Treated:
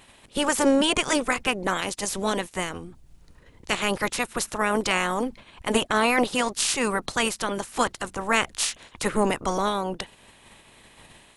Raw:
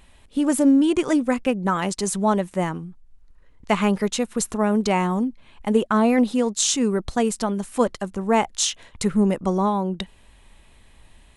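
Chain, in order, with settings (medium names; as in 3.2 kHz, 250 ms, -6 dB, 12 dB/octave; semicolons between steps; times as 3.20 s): spectral peaks clipped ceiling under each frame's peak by 23 dB; 1.83–3.97 s: peaking EQ 1.3 kHz -5 dB 1.7 oct; trim -3 dB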